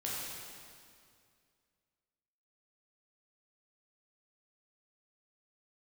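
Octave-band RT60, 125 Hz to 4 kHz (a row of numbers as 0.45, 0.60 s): 2.5, 2.4, 2.3, 2.2, 2.1, 2.0 s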